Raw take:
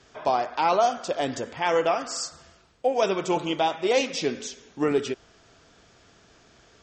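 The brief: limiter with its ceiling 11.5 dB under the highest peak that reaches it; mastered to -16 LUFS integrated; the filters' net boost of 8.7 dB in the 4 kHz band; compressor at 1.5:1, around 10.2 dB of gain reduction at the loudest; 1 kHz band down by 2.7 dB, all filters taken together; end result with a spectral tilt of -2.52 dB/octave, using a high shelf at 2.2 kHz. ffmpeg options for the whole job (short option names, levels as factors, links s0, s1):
-af "equalizer=f=1000:t=o:g=-5,highshelf=f=2200:g=4,equalizer=f=4000:t=o:g=8,acompressor=threshold=0.00447:ratio=1.5,volume=15.8,alimiter=limit=0.531:level=0:latency=1"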